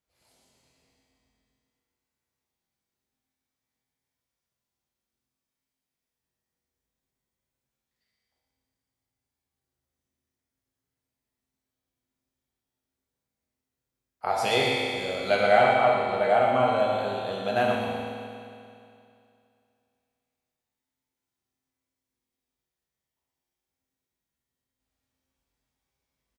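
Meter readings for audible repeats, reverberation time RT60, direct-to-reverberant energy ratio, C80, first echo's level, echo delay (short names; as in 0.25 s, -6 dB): 1, 2.5 s, -4.0 dB, -0.5 dB, -6.5 dB, 0.119 s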